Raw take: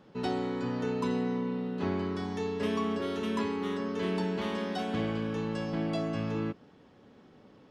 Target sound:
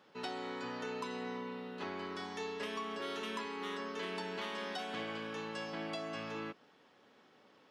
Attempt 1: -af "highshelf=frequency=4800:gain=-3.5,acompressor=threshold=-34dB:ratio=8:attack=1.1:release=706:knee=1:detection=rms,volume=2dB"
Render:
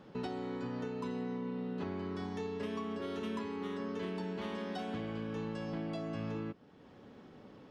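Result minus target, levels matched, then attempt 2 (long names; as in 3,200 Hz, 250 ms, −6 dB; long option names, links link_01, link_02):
1,000 Hz band −4.5 dB
-af "highpass=frequency=1300:poles=1,highshelf=frequency=4800:gain=-3.5,acompressor=threshold=-34dB:ratio=8:attack=1.1:release=706:knee=1:detection=rms,volume=2dB"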